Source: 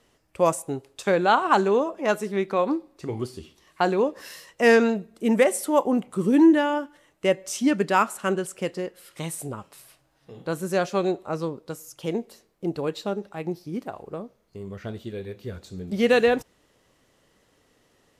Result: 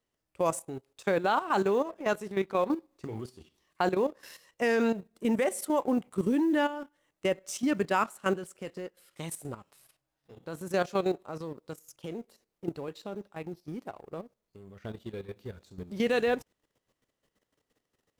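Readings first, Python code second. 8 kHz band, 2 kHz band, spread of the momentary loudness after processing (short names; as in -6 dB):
-7.0 dB, -7.0 dB, 17 LU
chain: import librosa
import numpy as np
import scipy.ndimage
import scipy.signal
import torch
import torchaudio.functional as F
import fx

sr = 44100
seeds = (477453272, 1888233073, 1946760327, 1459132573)

y = fx.law_mismatch(x, sr, coded='A')
y = fx.level_steps(y, sr, step_db=12)
y = y * librosa.db_to_amplitude(-1.0)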